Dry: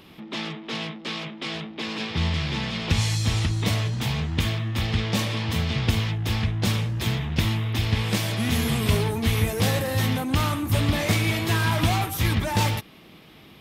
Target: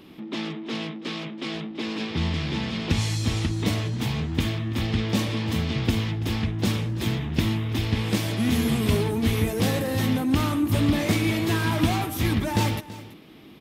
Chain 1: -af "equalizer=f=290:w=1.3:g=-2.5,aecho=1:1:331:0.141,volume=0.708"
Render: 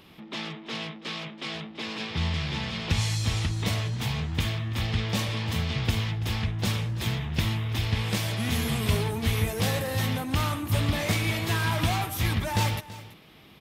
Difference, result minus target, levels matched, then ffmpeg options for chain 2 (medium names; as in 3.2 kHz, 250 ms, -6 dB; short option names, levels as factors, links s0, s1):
250 Hz band -5.0 dB
-af "equalizer=f=290:w=1.3:g=9,aecho=1:1:331:0.141,volume=0.708"